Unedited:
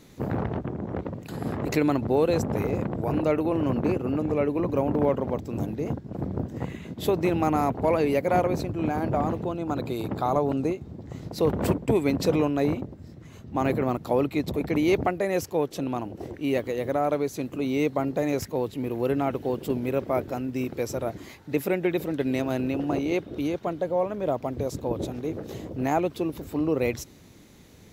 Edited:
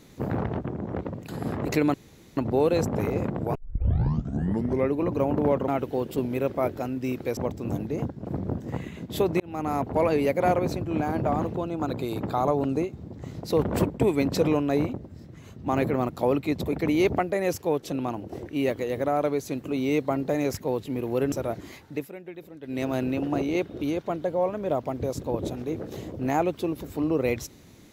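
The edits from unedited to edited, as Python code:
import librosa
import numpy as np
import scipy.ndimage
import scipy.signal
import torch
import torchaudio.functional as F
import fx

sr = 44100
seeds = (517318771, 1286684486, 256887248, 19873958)

y = fx.edit(x, sr, fx.insert_room_tone(at_s=1.94, length_s=0.43),
    fx.tape_start(start_s=3.12, length_s=1.4),
    fx.fade_in_span(start_s=7.28, length_s=0.69, curve='qsin'),
    fx.move(start_s=19.2, length_s=1.69, to_s=5.25),
    fx.fade_down_up(start_s=21.42, length_s=1.02, db=-15.5, fade_s=0.24), tone=tone)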